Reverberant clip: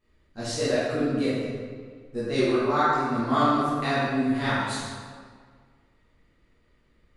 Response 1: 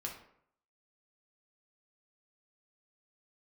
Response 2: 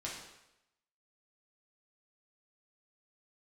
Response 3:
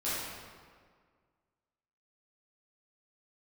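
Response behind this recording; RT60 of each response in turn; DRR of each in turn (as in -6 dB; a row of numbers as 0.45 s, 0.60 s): 3; 0.70 s, 0.90 s, 1.8 s; -1.0 dB, -5.5 dB, -12.0 dB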